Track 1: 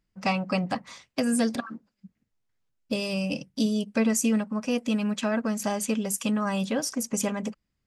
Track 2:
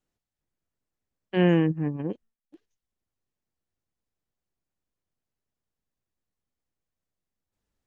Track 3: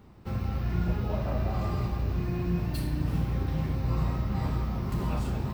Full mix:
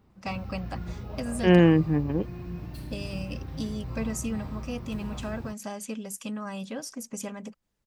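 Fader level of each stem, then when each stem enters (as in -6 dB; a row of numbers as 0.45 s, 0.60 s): -8.5 dB, +3.0 dB, -8.5 dB; 0.00 s, 0.10 s, 0.00 s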